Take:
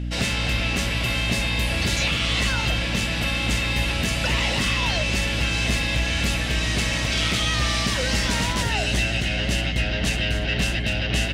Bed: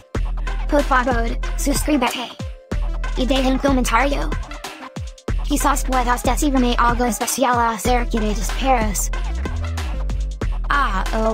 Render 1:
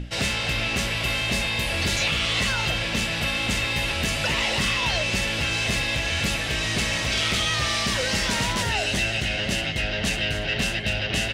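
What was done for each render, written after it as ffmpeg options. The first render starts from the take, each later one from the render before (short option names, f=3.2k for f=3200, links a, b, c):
-af "bandreject=f=60:t=h:w=6,bandreject=f=120:t=h:w=6,bandreject=f=180:t=h:w=6,bandreject=f=240:t=h:w=6,bandreject=f=300:t=h:w=6,bandreject=f=360:t=h:w=6"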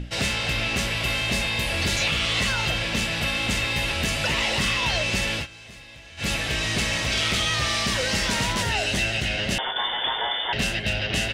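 -filter_complex "[0:a]asettb=1/sr,asplit=3[a][b][c];[a]atrim=end=9.584[d];[b]atrim=start=9.58:end=10.53,asetpts=PTS-STARTPTS,afade=t=in:d=0.004:c=qsin,afade=t=out:st=0.946:d=0.004:c=qsin,lowpass=f=3.1k:t=q:w=0.5098,lowpass=f=3.1k:t=q:w=0.6013,lowpass=f=3.1k:t=q:w=0.9,lowpass=f=3.1k:t=q:w=2.563,afreqshift=-3600[e];[c]atrim=start=10.526[f];[d][e]acrossfade=d=0.004:c1=hsin:c2=qsin[g];[g][f]acrossfade=d=0.004:c1=qsin:c2=hsin,asplit=3[h][i][j];[h]atrim=end=5.47,asetpts=PTS-STARTPTS,afade=t=out:st=5.32:d=0.15:c=qsin:silence=0.105925[k];[i]atrim=start=5.47:end=6.17,asetpts=PTS-STARTPTS,volume=-19.5dB[l];[j]atrim=start=6.17,asetpts=PTS-STARTPTS,afade=t=in:d=0.15:c=qsin:silence=0.105925[m];[k][l][m]concat=n=3:v=0:a=1"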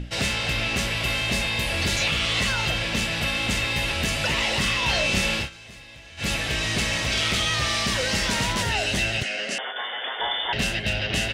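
-filter_complex "[0:a]asettb=1/sr,asplit=3[a][b][c];[a]atrim=end=4.854[d];[b]atrim=start=4.85:end=5.57,asetpts=PTS-STARTPTS,afade=t=in:d=0.004:c=qsin,afade=t=out:st=0.716:d=0.004:c=qsin,asplit=2[e][f];[f]adelay=31,volume=-3dB[g];[e][g]amix=inputs=2:normalize=0,atrim=end_sample=31752[h];[c]atrim=start=5.566[i];[d][h]acrossfade=d=0.004:c1=hsin:c2=qsin[j];[j][i]acrossfade=d=0.004:c1=qsin:c2=hsin,asettb=1/sr,asplit=3[k][l][m];[k]atrim=end=9.234[n];[l]atrim=start=9.23:end=10.2,asetpts=PTS-STARTPTS,afade=t=in:d=0.004:c=qsin,afade=t=out:st=0.966:d=0.004:c=qsin,highpass=f=260:w=0.5412,highpass=f=260:w=1.3066,equalizer=f=330:t=q:w=4:g=-9,equalizer=f=930:t=q:w=4:g=-10,equalizer=f=3.6k:t=q:w=4:g=-9,lowpass=f=9.5k:w=0.5412,lowpass=f=9.5k:w=1.3066[o];[m]atrim=start=10.196[p];[n][o]acrossfade=d=0.004:c1=hsin:c2=qsin[q];[q][p]acrossfade=d=0.004:c1=qsin:c2=hsin"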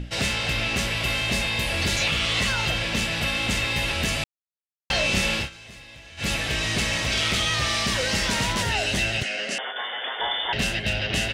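-filter_complex "[0:a]asplit=3[a][b][c];[a]atrim=end=4.24,asetpts=PTS-STARTPTS,afade=t=out:st=4.236:d=0.004:c=hsin[d];[b]atrim=start=4.24:end=4.9,asetpts=PTS-STARTPTS,volume=0[e];[c]atrim=start=4.9,asetpts=PTS-STARTPTS,afade=t=in:d=0.004:c=hsin[f];[d][e][f]concat=n=3:v=0:a=1"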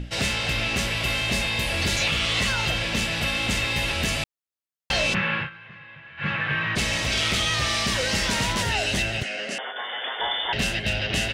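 -filter_complex "[0:a]asplit=3[a][b][c];[a]afade=t=out:st=5.13:d=0.02[d];[b]highpass=f=110:w=0.5412,highpass=f=110:w=1.3066,equalizer=f=150:t=q:w=4:g=7,equalizer=f=260:t=q:w=4:g=-10,equalizer=f=410:t=q:w=4:g=-6,equalizer=f=670:t=q:w=4:g=-7,equalizer=f=1.1k:t=q:w=4:g=7,equalizer=f=1.6k:t=q:w=4:g=9,lowpass=f=2.7k:w=0.5412,lowpass=f=2.7k:w=1.3066,afade=t=in:st=5.13:d=0.02,afade=t=out:st=6.75:d=0.02[e];[c]afade=t=in:st=6.75:d=0.02[f];[d][e][f]amix=inputs=3:normalize=0,asettb=1/sr,asplit=3[g][h][i];[g]atrim=end=9.024[j];[h]atrim=start=9.02:end=9.89,asetpts=PTS-STARTPTS,afade=t=in:d=0.004:c=qsin,afade=t=out:st=0.866:d=0.004:c=qsin,equalizer=f=5.7k:w=0.41:g=-4[k];[i]atrim=start=9.886[l];[j][k]acrossfade=d=0.004:c1=hsin:c2=qsin[m];[m][l]acrossfade=d=0.004:c1=qsin:c2=hsin"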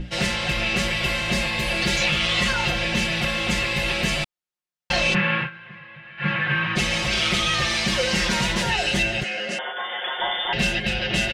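-af "highshelf=f=7.5k:g=-8.5,aecho=1:1:5.6:0.96"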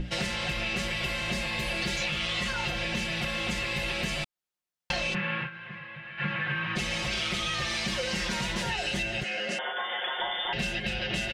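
-af "acompressor=threshold=-29dB:ratio=4"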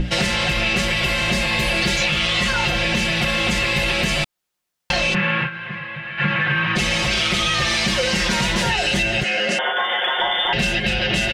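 -filter_complex "[0:a]asplit=2[a][b];[b]alimiter=limit=-23dB:level=0:latency=1,volume=0dB[c];[a][c]amix=inputs=2:normalize=0,acontrast=46"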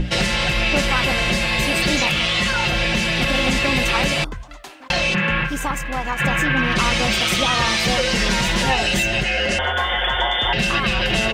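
-filter_complex "[1:a]volume=-7.5dB[a];[0:a][a]amix=inputs=2:normalize=0"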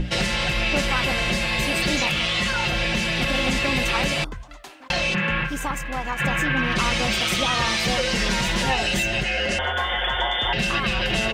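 -af "volume=-3.5dB"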